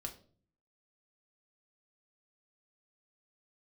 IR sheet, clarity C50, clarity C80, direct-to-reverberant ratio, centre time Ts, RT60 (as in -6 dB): 12.5 dB, 17.0 dB, 2.5 dB, 11 ms, 0.45 s